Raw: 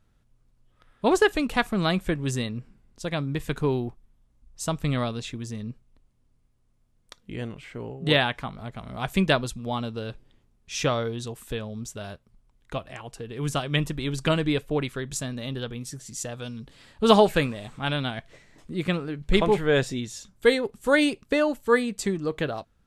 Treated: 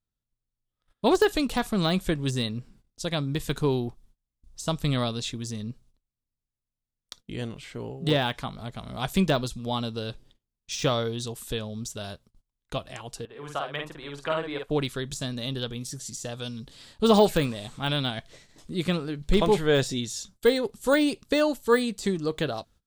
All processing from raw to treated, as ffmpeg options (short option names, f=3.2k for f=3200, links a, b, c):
-filter_complex "[0:a]asettb=1/sr,asplit=3[a][b][c];[a]atrim=end=13.254[d];[b]atrim=start=13.25:end=14.7,asetpts=PTS-STARTPTS,afade=t=in:d=0.004:c=qsin,afade=t=out:st=1.446:d=0.004:c=qsin,acrossover=split=500 2100:gain=0.126 1 0.0891[e][f][g];[e][f][g]amix=inputs=3:normalize=0,asplit=2[h][i];[i]adelay=49,volume=-3dB[j];[h][j]amix=inputs=2:normalize=0,atrim=end_sample=63945[k];[c]atrim=start=14.696[l];[d][k]acrossfade=d=0.004:c1=hsin:c2=qsin[m];[m][l]acrossfade=d=0.004:c1=qsin:c2=hsin,deesser=0.85,agate=range=-23dB:threshold=-54dB:ratio=16:detection=peak,highshelf=f=3k:t=q:w=1.5:g=6"